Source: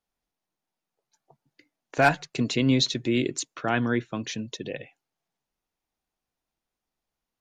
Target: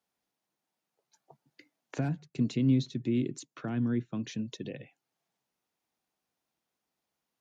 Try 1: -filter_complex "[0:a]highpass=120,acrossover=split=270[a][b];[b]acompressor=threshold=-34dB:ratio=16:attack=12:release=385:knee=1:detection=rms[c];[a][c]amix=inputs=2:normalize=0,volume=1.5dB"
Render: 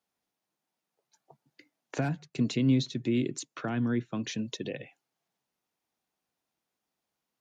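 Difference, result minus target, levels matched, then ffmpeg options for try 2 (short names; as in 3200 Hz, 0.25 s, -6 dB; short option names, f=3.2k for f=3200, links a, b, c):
compressor: peak gain reduction -6.5 dB
-filter_complex "[0:a]highpass=120,acrossover=split=270[a][b];[b]acompressor=threshold=-41dB:ratio=16:attack=12:release=385:knee=1:detection=rms[c];[a][c]amix=inputs=2:normalize=0,volume=1.5dB"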